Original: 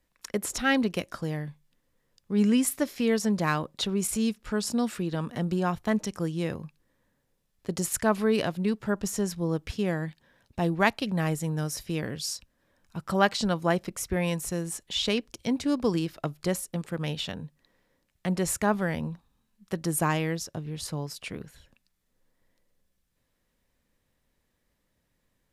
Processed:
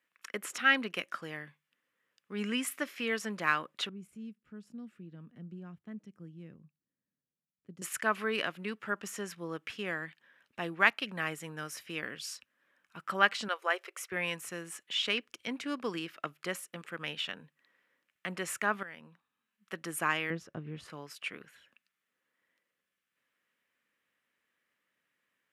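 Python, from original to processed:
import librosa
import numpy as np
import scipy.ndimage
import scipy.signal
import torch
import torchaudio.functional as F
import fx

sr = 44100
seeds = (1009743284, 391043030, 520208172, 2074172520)

y = fx.curve_eq(x, sr, hz=(170.0, 520.0, 1100.0), db=(0, -17, -26), at=(3.89, 7.82))
y = fx.brickwall_highpass(y, sr, low_hz=350.0, at=(13.48, 14.12))
y = fx.tilt_eq(y, sr, slope=-4.0, at=(20.3, 20.9))
y = fx.edit(y, sr, fx.fade_in_from(start_s=18.83, length_s=0.95, floor_db=-15.0), tone=tone)
y = scipy.signal.sosfilt(scipy.signal.butter(2, 250.0, 'highpass', fs=sr, output='sos'), y)
y = fx.band_shelf(y, sr, hz=1900.0, db=11.0, octaves=1.7)
y = F.gain(torch.from_numpy(y), -9.0).numpy()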